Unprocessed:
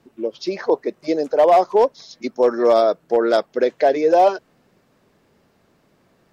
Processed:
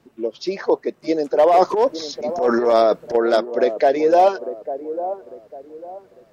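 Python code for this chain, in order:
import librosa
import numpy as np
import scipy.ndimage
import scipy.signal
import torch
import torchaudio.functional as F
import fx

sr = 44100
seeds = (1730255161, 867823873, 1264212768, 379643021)

y = fx.transient(x, sr, attack_db=-10, sustain_db=10, at=(1.46, 3.15))
y = fx.echo_wet_bandpass(y, sr, ms=849, feedback_pct=31, hz=430.0, wet_db=-11)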